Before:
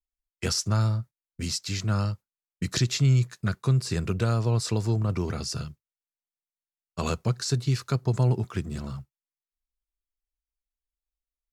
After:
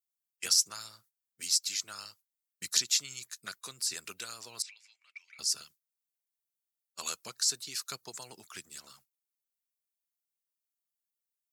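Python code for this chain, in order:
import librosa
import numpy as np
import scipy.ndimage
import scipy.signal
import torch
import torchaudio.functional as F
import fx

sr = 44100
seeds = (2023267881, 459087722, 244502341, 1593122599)

y = fx.ladder_bandpass(x, sr, hz=2400.0, resonance_pct=80, at=(4.62, 5.39))
y = fx.hpss(y, sr, part='harmonic', gain_db=-12)
y = np.diff(y, prepend=0.0)
y = F.gain(torch.from_numpy(y), 6.5).numpy()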